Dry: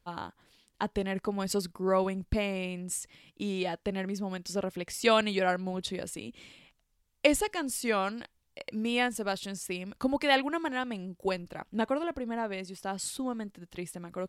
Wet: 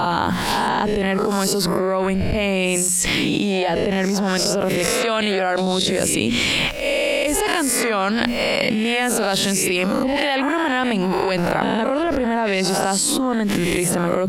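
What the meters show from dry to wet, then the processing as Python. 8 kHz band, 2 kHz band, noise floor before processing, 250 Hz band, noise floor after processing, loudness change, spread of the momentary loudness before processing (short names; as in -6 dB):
+17.0 dB, +13.0 dB, -74 dBFS, +13.0 dB, -21 dBFS, +12.5 dB, 14 LU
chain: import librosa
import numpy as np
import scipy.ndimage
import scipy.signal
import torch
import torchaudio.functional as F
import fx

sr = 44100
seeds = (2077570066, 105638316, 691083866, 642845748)

y = fx.spec_swells(x, sr, rise_s=0.59)
y = fx.hum_notches(y, sr, base_hz=60, count=4)
y = fx.env_flatten(y, sr, amount_pct=100)
y = y * librosa.db_to_amplitude(-2.5)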